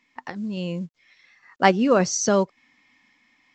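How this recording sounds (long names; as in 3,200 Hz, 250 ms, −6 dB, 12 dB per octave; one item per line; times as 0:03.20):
a quantiser's noise floor 12 bits, dither none
sample-and-hold tremolo
mu-law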